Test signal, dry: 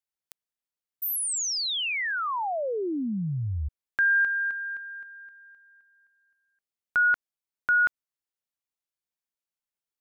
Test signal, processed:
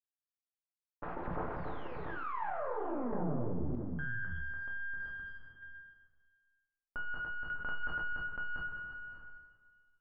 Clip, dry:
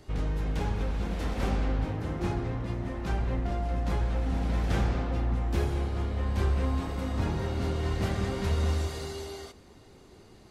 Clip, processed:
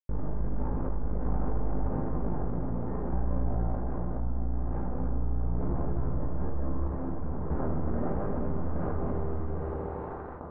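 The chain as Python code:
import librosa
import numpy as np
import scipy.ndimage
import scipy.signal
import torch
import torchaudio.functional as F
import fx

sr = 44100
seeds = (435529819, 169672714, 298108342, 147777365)

y = fx.self_delay(x, sr, depth_ms=0.37)
y = fx.highpass(y, sr, hz=64.0, slope=6)
y = fx.tilt_eq(y, sr, slope=-3.5)
y = fx.rider(y, sr, range_db=3, speed_s=2.0)
y = fx.echo_multitap(y, sr, ms=(290, 689), db=(-6.0, -7.0))
y = np.maximum(y, 0.0)
y = fx.peak_eq(y, sr, hz=86.0, db=-9.5, octaves=3.0)
y = np.sign(y) * np.maximum(np.abs(y) - 10.0 ** (-39.0 / 20.0), 0.0)
y = scipy.signal.sosfilt(scipy.signal.butter(4, 1400.0, 'lowpass', fs=sr, output='sos'), y)
y = fx.rev_double_slope(y, sr, seeds[0], early_s=0.61, late_s=1.7, knee_db=-21, drr_db=-2.5)
y = fx.tremolo_random(y, sr, seeds[1], hz=1.6, depth_pct=75)
y = fx.env_flatten(y, sr, amount_pct=70)
y = y * librosa.db_to_amplitude(-9.0)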